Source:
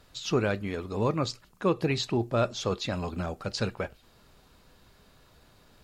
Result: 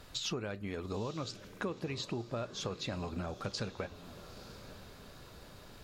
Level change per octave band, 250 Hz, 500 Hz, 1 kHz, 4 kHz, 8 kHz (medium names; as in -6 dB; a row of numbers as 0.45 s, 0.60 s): -9.5 dB, -10.5 dB, -10.0 dB, -5.0 dB, -4.0 dB